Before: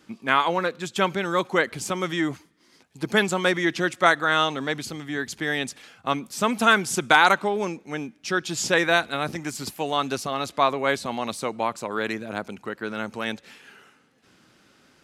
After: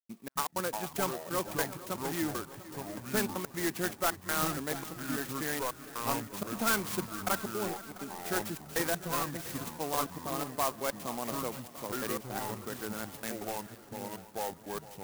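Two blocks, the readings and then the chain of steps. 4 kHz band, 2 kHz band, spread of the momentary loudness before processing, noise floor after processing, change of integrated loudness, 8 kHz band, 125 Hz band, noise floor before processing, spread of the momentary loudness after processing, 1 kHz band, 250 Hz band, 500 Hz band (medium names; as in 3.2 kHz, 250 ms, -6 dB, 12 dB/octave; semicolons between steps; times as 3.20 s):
-12.0 dB, -14.5 dB, 13 LU, -52 dBFS, -10.5 dB, -3.5 dB, -6.5 dB, -59 dBFS, 9 LU, -11.5 dB, -8.5 dB, -10.0 dB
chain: trance gate ".xx.x.xxxxxx..xx" 161 bpm -60 dB; hard clipper -14.5 dBFS, distortion -12 dB; ever faster or slower copies 231 ms, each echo -5 st, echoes 2, each echo -6 dB; multi-head delay 231 ms, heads second and third, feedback 54%, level -17 dB; sampling jitter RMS 0.085 ms; trim -8.5 dB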